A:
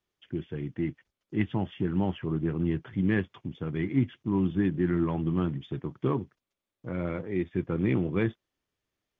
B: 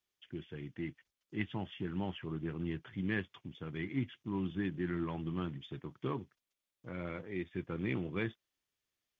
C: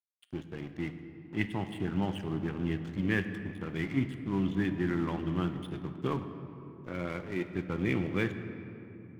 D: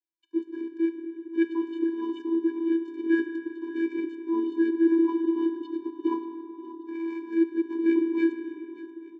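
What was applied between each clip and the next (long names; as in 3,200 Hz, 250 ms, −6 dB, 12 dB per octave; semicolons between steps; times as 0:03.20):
tilt shelving filter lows −5.5 dB, about 1,500 Hz; level −5 dB
dead-zone distortion −52.5 dBFS; on a send at −8 dB: convolution reverb RT60 3.1 s, pre-delay 4 ms; on the sum: level +6 dB
channel vocoder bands 16, square 331 Hz; repeating echo 582 ms, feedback 51%, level −17 dB; level +8 dB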